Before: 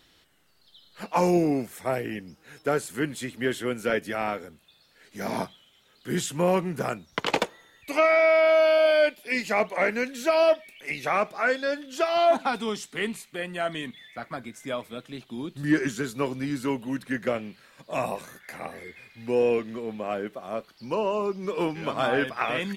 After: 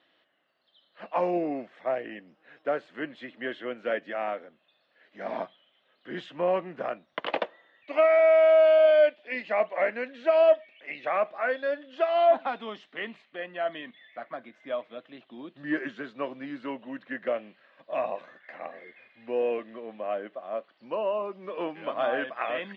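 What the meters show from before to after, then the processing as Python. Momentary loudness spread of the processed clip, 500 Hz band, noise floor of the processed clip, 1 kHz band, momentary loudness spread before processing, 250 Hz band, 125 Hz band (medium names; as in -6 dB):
20 LU, 0.0 dB, -70 dBFS, -3.0 dB, 16 LU, -8.5 dB, under -15 dB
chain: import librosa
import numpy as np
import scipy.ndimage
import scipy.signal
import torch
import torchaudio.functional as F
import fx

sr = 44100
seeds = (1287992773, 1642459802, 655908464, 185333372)

y = fx.cabinet(x, sr, low_hz=400.0, low_slope=12, high_hz=2800.0, hz=(420.0, 610.0, 890.0, 1400.0, 2300.0), db=(-8, 4, -6, -6, -7))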